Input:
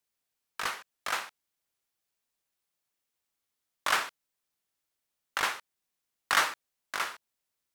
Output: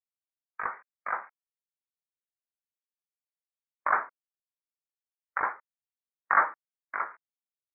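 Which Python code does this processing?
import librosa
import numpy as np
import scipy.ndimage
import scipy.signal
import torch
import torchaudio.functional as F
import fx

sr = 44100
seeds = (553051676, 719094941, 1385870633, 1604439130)

y = scipy.signal.sosfilt(scipy.signal.butter(12, 2300.0, 'lowpass', fs=sr, output='sos'), x)
y = fx.env_lowpass_down(y, sr, base_hz=1500.0, full_db=-30.0)
y = fx.spectral_expand(y, sr, expansion=1.5)
y = F.gain(torch.from_numpy(y), 4.5).numpy()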